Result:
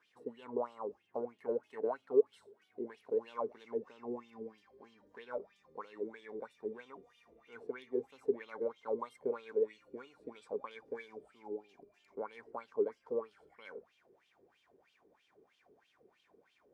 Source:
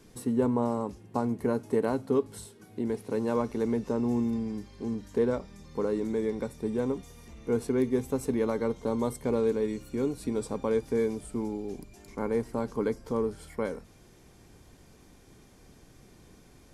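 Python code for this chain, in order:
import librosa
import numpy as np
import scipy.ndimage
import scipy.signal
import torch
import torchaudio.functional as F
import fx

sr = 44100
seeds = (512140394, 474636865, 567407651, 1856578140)

y = fx.wah_lfo(x, sr, hz=3.1, low_hz=400.0, high_hz=3200.0, q=6.5)
y = y * librosa.db_to_amplitude(2.0)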